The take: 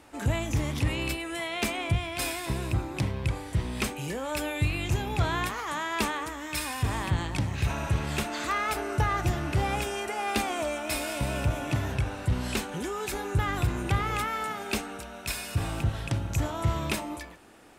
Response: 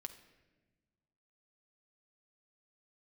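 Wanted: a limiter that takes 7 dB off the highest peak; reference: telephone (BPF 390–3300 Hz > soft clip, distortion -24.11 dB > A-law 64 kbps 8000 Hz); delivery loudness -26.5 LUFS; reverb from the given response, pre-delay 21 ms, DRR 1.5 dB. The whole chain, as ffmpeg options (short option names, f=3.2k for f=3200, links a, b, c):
-filter_complex "[0:a]alimiter=limit=-22.5dB:level=0:latency=1,asplit=2[a][b];[1:a]atrim=start_sample=2205,adelay=21[c];[b][c]afir=irnorm=-1:irlink=0,volume=3dB[d];[a][d]amix=inputs=2:normalize=0,highpass=390,lowpass=3.3k,asoftclip=threshold=-21dB,volume=7.5dB" -ar 8000 -c:a pcm_alaw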